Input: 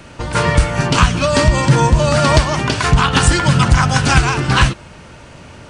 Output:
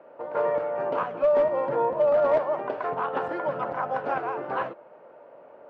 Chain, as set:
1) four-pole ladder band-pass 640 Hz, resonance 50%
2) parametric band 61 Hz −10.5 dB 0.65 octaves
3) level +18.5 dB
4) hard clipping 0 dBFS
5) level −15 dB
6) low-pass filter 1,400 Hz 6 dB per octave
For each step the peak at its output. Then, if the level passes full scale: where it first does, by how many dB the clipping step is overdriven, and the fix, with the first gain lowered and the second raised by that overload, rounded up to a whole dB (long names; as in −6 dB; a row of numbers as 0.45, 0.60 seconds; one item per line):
−13.0, −13.0, +5.5, 0.0, −15.0, −15.0 dBFS
step 3, 5.5 dB
step 3 +12.5 dB, step 5 −9 dB